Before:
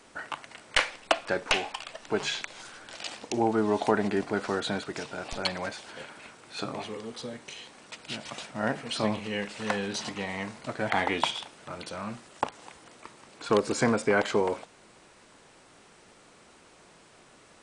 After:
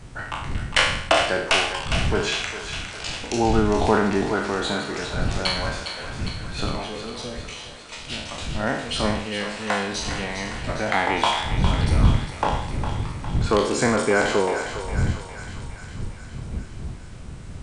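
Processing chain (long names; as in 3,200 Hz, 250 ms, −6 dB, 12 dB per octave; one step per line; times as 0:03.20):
peak hold with a decay on every bin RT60 0.71 s
wind on the microphone 110 Hz −31 dBFS
0:03.09–0:04.34: low-shelf EQ 170 Hz +7.5 dB
on a send: feedback echo with a high-pass in the loop 407 ms, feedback 66%, high-pass 640 Hz, level −8 dB
on the sum: level +2.5 dB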